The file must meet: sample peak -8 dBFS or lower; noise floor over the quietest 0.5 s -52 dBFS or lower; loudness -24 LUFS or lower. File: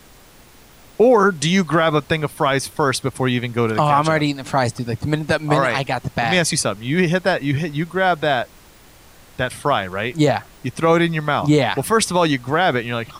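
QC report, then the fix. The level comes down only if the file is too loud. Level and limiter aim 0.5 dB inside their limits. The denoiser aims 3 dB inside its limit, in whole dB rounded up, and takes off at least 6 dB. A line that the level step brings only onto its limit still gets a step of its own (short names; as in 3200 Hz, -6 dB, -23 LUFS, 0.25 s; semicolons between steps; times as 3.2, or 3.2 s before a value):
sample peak -5.0 dBFS: fail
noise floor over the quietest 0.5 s -47 dBFS: fail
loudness -18.5 LUFS: fail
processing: gain -6 dB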